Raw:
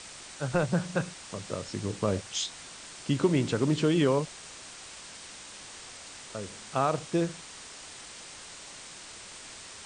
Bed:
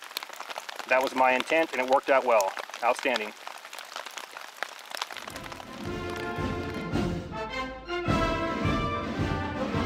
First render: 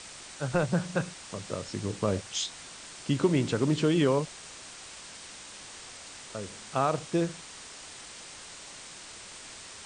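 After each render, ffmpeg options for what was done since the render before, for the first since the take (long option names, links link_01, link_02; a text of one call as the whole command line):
ffmpeg -i in.wav -af anull out.wav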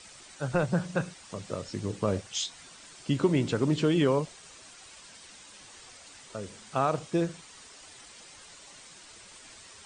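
ffmpeg -i in.wav -af "afftdn=noise_reduction=8:noise_floor=-46" out.wav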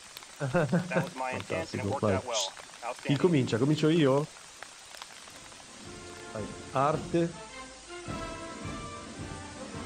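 ffmpeg -i in.wav -i bed.wav -filter_complex "[1:a]volume=-12dB[link_01];[0:a][link_01]amix=inputs=2:normalize=0" out.wav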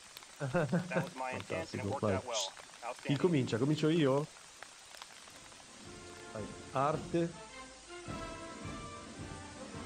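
ffmpeg -i in.wav -af "volume=-5.5dB" out.wav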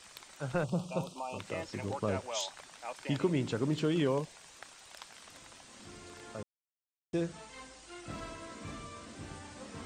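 ffmpeg -i in.wav -filter_complex "[0:a]asettb=1/sr,asplit=3[link_01][link_02][link_03];[link_01]atrim=end=0.644[link_04];[link_02]atrim=start=0.64:end=1.39,asetpts=PTS-STARTPTS,afade=type=in:duration=0.004:curve=qsin,afade=type=out:start_time=0.746:duration=0.004:curve=qsin,asuperstop=centerf=1800:order=8:qfactor=1.4[link_05];[link_03]atrim=start=1.386[link_06];[link_04][link_05]acrossfade=duration=0.004:curve1=hsin:curve2=qsin[link_07];[link_07][link_06]acrossfade=duration=0.004:curve1=qsin:curve2=hsin,asettb=1/sr,asplit=3[link_08][link_09][link_10];[link_08]atrim=end=4.034[link_11];[link_09]atrim=start=4.03:end=4.52,asetpts=PTS-STARTPTS,afade=type=in:duration=0.004:curve=qsin,afade=type=out:start_time=0.486:duration=0.004:curve=qsin,bandreject=frequency=1300:width=6.7[link_12];[link_10]atrim=start=4.516[link_13];[link_11][link_12]acrossfade=duration=0.004:curve1=hsin:curve2=qsin[link_14];[link_14][link_13]acrossfade=duration=0.004:curve1=qsin:curve2=hsin,asplit=3[link_15][link_16][link_17];[link_15]atrim=end=6.43,asetpts=PTS-STARTPTS,afade=type=out:start_time=6.426:duration=0.004:curve=hsin[link_18];[link_16]atrim=start=6.43:end=7.13,asetpts=PTS-STARTPTS,volume=0[link_19];[link_17]atrim=start=7.13,asetpts=PTS-STARTPTS,afade=type=in:duration=0.004:curve=hsin[link_20];[link_18][link_19][link_20]concat=n=3:v=0:a=1" out.wav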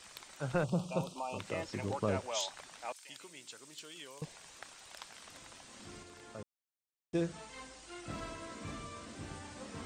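ffmpeg -i in.wav -filter_complex "[0:a]asettb=1/sr,asplit=3[link_01][link_02][link_03];[link_01]atrim=end=2.924[link_04];[link_02]atrim=start=2.92:end=4.22,asetpts=PTS-STARTPTS,afade=type=in:duration=0.004:curve=qsin,afade=type=out:start_time=1.296:duration=0.004:curve=qsin,aderivative[link_05];[link_03]atrim=start=4.216[link_06];[link_04][link_05]acrossfade=duration=0.004:curve1=hsin:curve2=qsin[link_07];[link_07][link_06]acrossfade=duration=0.004:curve1=qsin:curve2=hsin,asplit=3[link_08][link_09][link_10];[link_08]atrim=end=6.032[link_11];[link_09]atrim=start=6.028:end=7.152,asetpts=PTS-STARTPTS,volume=-4dB[link_12];[link_10]atrim=start=7.148[link_13];[link_11][link_12]acrossfade=duration=0.004:curve1=hsin:curve2=hsin[link_14];[link_14][link_13]acrossfade=duration=0.004:curve1=hsin:curve2=hsin" out.wav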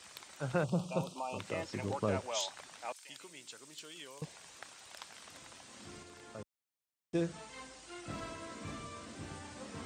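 ffmpeg -i in.wav -af "highpass=60" out.wav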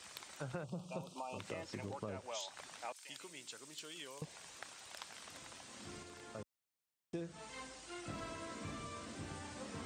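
ffmpeg -i in.wav -af "acompressor=threshold=-41dB:ratio=5" out.wav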